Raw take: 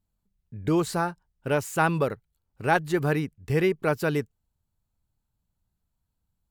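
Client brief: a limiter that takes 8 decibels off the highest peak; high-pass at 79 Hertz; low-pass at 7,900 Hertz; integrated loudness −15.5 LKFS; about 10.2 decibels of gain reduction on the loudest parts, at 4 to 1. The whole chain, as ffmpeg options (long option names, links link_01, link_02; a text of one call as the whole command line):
ffmpeg -i in.wav -af "highpass=79,lowpass=7900,acompressor=threshold=-31dB:ratio=4,volume=23dB,alimiter=limit=-3.5dB:level=0:latency=1" out.wav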